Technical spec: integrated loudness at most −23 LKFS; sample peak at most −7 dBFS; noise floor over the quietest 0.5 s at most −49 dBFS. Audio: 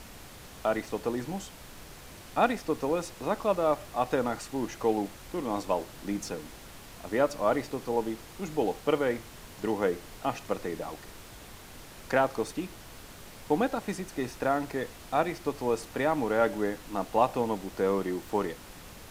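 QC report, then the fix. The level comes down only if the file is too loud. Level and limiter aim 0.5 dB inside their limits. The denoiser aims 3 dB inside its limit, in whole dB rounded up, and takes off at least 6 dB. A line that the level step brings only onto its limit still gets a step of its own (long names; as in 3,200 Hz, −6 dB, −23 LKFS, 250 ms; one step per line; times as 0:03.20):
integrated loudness −30.5 LKFS: in spec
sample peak −10.5 dBFS: in spec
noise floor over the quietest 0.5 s −47 dBFS: out of spec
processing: broadband denoise 6 dB, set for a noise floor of −47 dBFS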